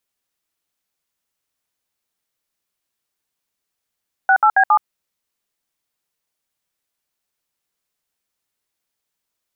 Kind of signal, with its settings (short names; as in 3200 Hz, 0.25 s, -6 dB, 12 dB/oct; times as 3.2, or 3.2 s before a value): DTMF "68B7", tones 73 ms, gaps 64 ms, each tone -12 dBFS